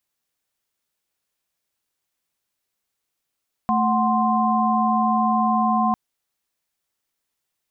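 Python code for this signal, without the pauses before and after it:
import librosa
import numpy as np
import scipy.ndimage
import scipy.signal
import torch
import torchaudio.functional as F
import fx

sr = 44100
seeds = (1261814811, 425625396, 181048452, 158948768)

y = fx.chord(sr, length_s=2.25, notes=(57, 78, 84), wave='sine', level_db=-21.0)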